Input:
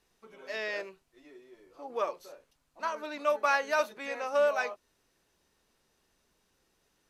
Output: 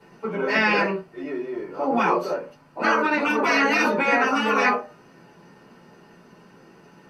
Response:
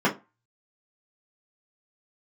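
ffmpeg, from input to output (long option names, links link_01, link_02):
-filter_complex "[1:a]atrim=start_sample=2205,asetrate=38367,aresample=44100[link_01];[0:a][link_01]afir=irnorm=-1:irlink=0,afftfilt=real='re*lt(hypot(re,im),0.447)':imag='im*lt(hypot(re,im),0.447)':win_size=1024:overlap=0.75,volume=6dB"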